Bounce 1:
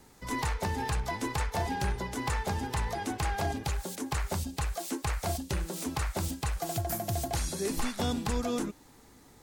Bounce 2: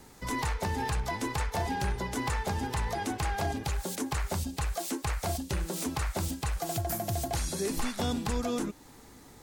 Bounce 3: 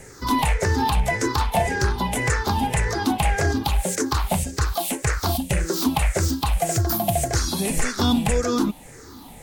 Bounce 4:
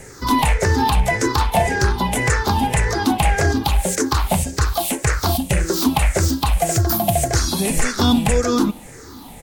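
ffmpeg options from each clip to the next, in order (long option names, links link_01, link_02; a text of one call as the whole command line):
ffmpeg -i in.wav -af "alimiter=level_in=2.5dB:limit=-24dB:level=0:latency=1:release=271,volume=-2.5dB,volume=4dB" out.wav
ffmpeg -i in.wav -af "afftfilt=real='re*pow(10,13/40*sin(2*PI*(0.51*log(max(b,1)*sr/1024/100)/log(2)-(-1.8)*(pts-256)/sr)))':imag='im*pow(10,13/40*sin(2*PI*(0.51*log(max(b,1)*sr/1024/100)/log(2)-(-1.8)*(pts-256)/sr)))':win_size=1024:overlap=0.75,volume=8dB" out.wav
ffmpeg -i in.wav -filter_complex "[0:a]asplit=2[link_01][link_02];[link_02]adelay=70,lowpass=frequency=2000:poles=1,volume=-22dB,asplit=2[link_03][link_04];[link_04]adelay=70,lowpass=frequency=2000:poles=1,volume=0.51,asplit=2[link_05][link_06];[link_06]adelay=70,lowpass=frequency=2000:poles=1,volume=0.51,asplit=2[link_07][link_08];[link_08]adelay=70,lowpass=frequency=2000:poles=1,volume=0.51[link_09];[link_01][link_03][link_05][link_07][link_09]amix=inputs=5:normalize=0,volume=4dB" out.wav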